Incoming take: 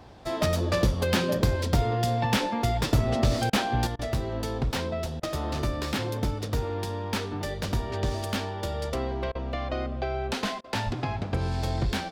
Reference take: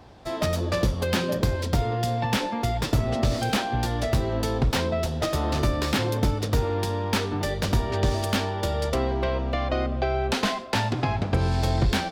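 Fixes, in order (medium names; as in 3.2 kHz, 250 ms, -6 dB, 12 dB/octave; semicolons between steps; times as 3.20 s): 10.85–10.97 s: high-pass 140 Hz 24 dB/octave; interpolate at 3.50/3.96/5.20/9.32/10.61 s, 30 ms; trim 0 dB, from 3.87 s +5 dB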